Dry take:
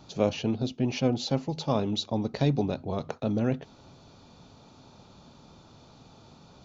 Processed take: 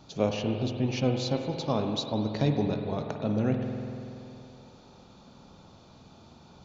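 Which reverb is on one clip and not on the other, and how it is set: spring tank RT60 2.8 s, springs 47 ms, chirp 60 ms, DRR 4 dB; gain -1.5 dB

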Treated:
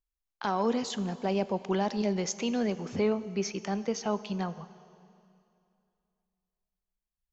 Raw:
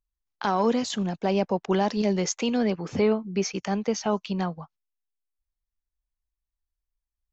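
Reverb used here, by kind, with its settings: plate-style reverb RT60 2.6 s, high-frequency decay 0.95×, DRR 14 dB; gain -5 dB

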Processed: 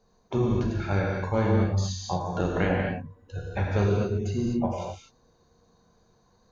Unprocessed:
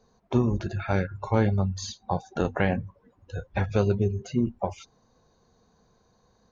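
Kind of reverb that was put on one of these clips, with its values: non-linear reverb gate 0.28 s flat, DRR -2 dB; gain -3.5 dB

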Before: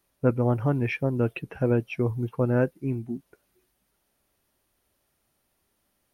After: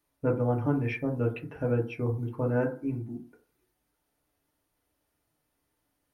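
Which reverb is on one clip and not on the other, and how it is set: FDN reverb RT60 0.41 s, low-frequency decay 0.95×, high-frequency decay 0.3×, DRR 0 dB; gain -7 dB

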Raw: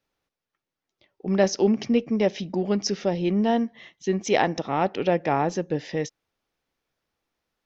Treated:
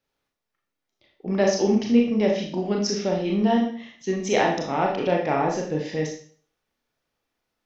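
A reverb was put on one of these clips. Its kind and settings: Schroeder reverb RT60 0.48 s, combs from 26 ms, DRR -0.5 dB; gain -2 dB

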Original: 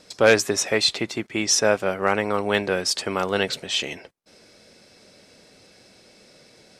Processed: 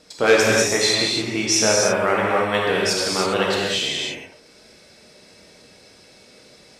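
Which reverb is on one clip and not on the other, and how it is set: non-linear reverb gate 0.35 s flat, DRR -4.5 dB; gain -2 dB

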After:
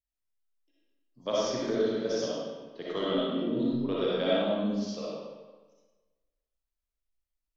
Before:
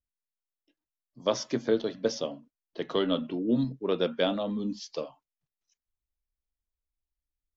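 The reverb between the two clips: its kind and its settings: digital reverb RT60 1.3 s, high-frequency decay 0.8×, pre-delay 20 ms, DRR -7.5 dB; gain -8 dB

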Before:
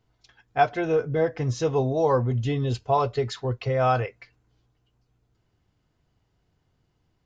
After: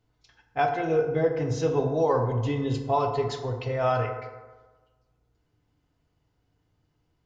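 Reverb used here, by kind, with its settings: FDN reverb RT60 1.3 s, low-frequency decay 0.9×, high-frequency decay 0.45×, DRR 3 dB; gain -3.5 dB

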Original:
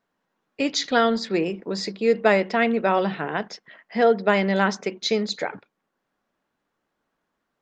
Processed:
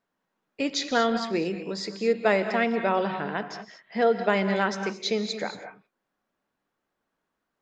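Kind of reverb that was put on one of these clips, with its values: non-linear reverb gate 0.25 s rising, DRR 8.5 dB; gain -4 dB

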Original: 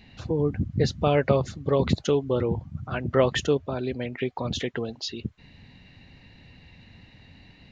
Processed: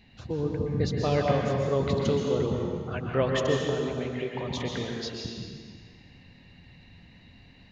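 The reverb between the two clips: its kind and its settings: plate-style reverb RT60 1.8 s, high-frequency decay 0.95×, pre-delay 0.11 s, DRR -0.5 dB; gain -5.5 dB

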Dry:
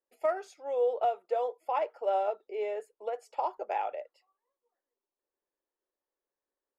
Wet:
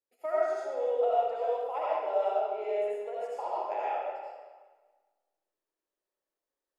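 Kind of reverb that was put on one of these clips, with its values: digital reverb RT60 1.4 s, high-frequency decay 0.85×, pre-delay 45 ms, DRR -7.5 dB; gain -7.5 dB

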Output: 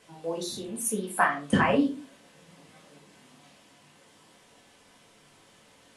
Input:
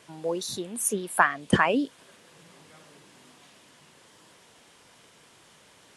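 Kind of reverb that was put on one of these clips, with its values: shoebox room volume 190 m³, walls furnished, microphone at 2 m; gain -6 dB

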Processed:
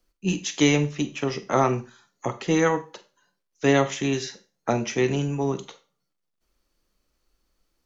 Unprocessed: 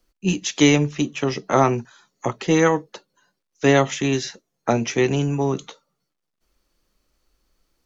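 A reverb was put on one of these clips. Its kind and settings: Schroeder reverb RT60 0.32 s, combs from 32 ms, DRR 11.5 dB; gain -4 dB

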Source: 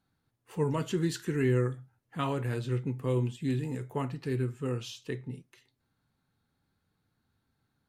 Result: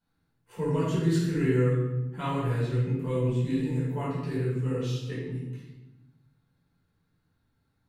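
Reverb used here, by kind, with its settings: shoebox room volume 510 m³, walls mixed, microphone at 4.8 m; gain -9.5 dB

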